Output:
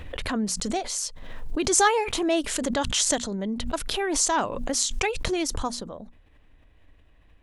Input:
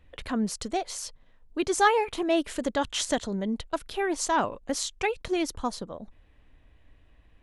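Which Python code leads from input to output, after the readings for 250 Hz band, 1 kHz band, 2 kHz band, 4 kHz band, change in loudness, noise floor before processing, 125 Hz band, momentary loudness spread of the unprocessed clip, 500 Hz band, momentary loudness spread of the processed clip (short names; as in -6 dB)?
+1.5 dB, +0.5 dB, +1.5 dB, +5.5 dB, +3.0 dB, -59 dBFS, +4.5 dB, 13 LU, +1.0 dB, 11 LU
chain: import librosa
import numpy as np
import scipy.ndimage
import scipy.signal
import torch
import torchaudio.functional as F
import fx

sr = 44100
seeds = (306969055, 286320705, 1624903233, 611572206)

y = fx.hum_notches(x, sr, base_hz=60, count=4)
y = fx.dynamic_eq(y, sr, hz=7000.0, q=0.82, threshold_db=-47.0, ratio=4.0, max_db=8)
y = fx.pre_swell(y, sr, db_per_s=37.0)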